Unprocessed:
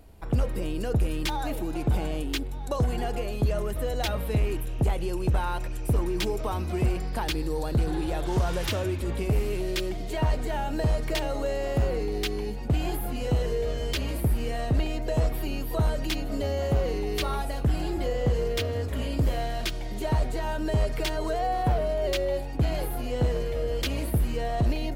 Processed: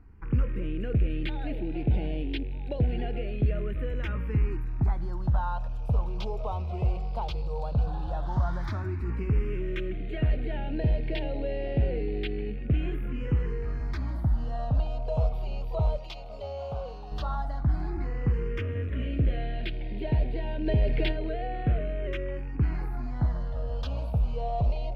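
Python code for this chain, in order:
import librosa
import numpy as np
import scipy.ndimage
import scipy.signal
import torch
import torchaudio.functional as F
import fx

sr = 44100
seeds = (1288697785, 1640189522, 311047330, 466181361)

y = fx.rattle_buzz(x, sr, strikes_db=-31.0, level_db=-38.0)
y = fx.low_shelf(y, sr, hz=420.0, db=-10.5, at=(15.97, 17.12))
y = fx.phaser_stages(y, sr, stages=4, low_hz=290.0, high_hz=1200.0, hz=0.11, feedback_pct=5)
y = fx.air_absorb(y, sr, metres=270.0)
y = fx.env_flatten(y, sr, amount_pct=50, at=(20.66, 21.11), fade=0.02)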